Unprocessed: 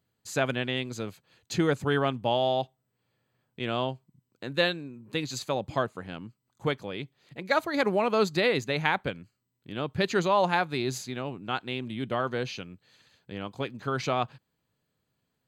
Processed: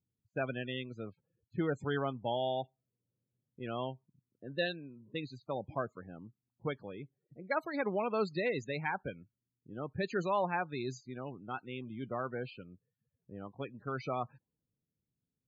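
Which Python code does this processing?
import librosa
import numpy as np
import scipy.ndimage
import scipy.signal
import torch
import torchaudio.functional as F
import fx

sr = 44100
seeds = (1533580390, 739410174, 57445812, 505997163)

y = fx.spec_topn(x, sr, count=32)
y = fx.env_lowpass(y, sr, base_hz=330.0, full_db=-25.0)
y = y * 10.0 ** (-8.0 / 20.0)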